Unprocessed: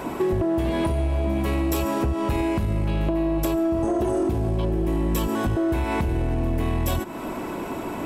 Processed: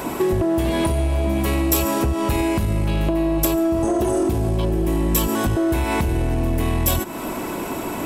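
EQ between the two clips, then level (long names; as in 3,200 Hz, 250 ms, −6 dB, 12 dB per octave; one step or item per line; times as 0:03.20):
high-shelf EQ 4,500 Hz +10.5 dB
+3.0 dB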